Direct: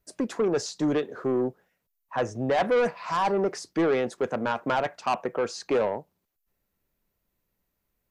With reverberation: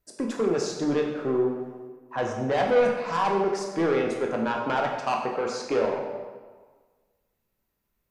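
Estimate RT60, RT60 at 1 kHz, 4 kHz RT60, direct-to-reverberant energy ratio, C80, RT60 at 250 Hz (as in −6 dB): 1.5 s, 1.5 s, 1.0 s, 0.5 dB, 5.5 dB, 1.4 s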